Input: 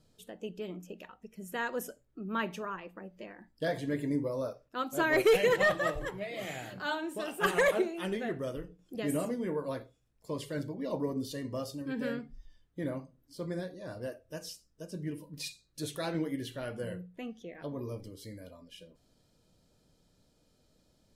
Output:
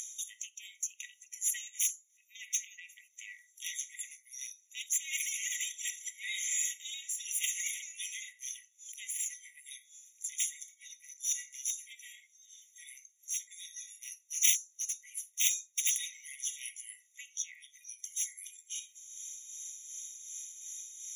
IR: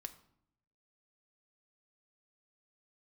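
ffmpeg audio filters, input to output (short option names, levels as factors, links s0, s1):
-filter_complex "[0:a]acompressor=threshold=0.0126:ratio=2,asplit=2[s0][s1];[1:a]atrim=start_sample=2205,atrim=end_sample=4410[s2];[s1][s2]afir=irnorm=-1:irlink=0,volume=1.41[s3];[s0][s3]amix=inputs=2:normalize=0,asoftclip=type=tanh:threshold=0.0841,lowpass=11000,highshelf=f=4000:t=q:w=3:g=11,acompressor=mode=upward:threshold=0.0178:ratio=2.5,tremolo=f=2.7:d=0.55,aeval=exprs='0.237*(cos(1*acos(clip(val(0)/0.237,-1,1)))-cos(1*PI/2))+0.0944*(cos(2*acos(clip(val(0)/0.237,-1,1)))-cos(2*PI/2))+0.106*(cos(7*acos(clip(val(0)/0.237,-1,1)))-cos(7*PI/2))':c=same,afftfilt=real='re*eq(mod(floor(b*sr/1024/1900),2),1)':imag='im*eq(mod(floor(b*sr/1024/1900),2),1)':win_size=1024:overlap=0.75,volume=1.41"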